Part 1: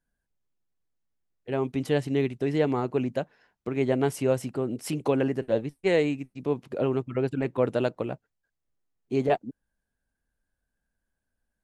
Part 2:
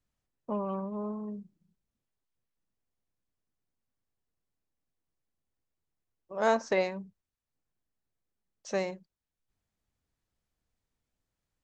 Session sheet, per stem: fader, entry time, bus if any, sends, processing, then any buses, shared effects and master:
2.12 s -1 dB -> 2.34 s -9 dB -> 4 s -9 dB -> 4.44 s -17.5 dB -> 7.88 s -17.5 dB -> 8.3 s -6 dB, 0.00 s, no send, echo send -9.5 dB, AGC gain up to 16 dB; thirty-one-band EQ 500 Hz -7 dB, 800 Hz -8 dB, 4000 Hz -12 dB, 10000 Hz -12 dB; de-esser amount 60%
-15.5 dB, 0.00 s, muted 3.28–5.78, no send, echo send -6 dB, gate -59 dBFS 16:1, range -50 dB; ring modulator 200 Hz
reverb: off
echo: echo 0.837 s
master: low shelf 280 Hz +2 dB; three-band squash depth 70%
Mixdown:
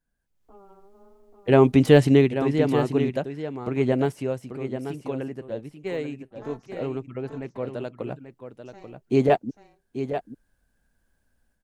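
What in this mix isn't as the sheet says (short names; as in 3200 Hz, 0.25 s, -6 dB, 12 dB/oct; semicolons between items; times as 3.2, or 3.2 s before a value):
stem 1: missing thirty-one-band EQ 500 Hz -7 dB, 800 Hz -8 dB, 4000 Hz -12 dB, 10000 Hz -12 dB; master: missing three-band squash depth 70%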